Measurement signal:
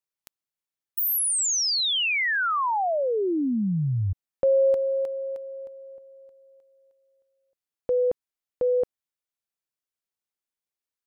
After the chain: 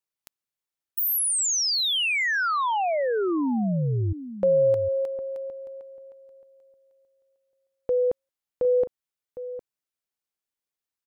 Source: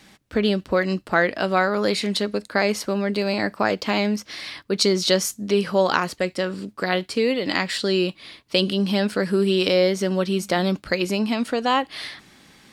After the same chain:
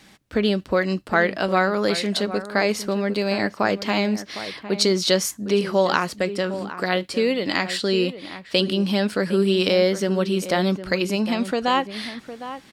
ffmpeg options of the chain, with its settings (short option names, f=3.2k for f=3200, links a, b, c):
-filter_complex "[0:a]asplit=2[a][b];[b]adelay=758,volume=-12dB,highshelf=f=4k:g=-17.1[c];[a][c]amix=inputs=2:normalize=0"